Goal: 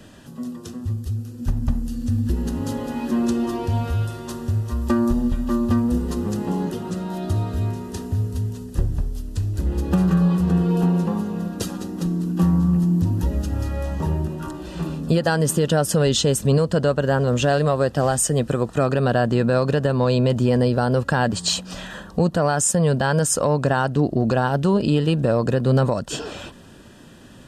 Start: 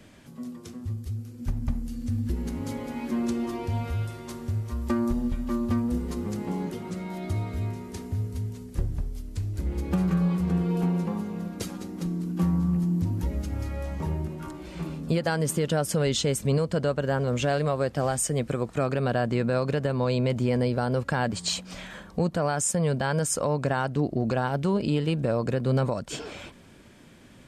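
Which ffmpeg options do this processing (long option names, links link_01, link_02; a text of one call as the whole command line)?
ffmpeg -i in.wav -af "asuperstop=centerf=2200:order=4:qfactor=4.9,acontrast=70" out.wav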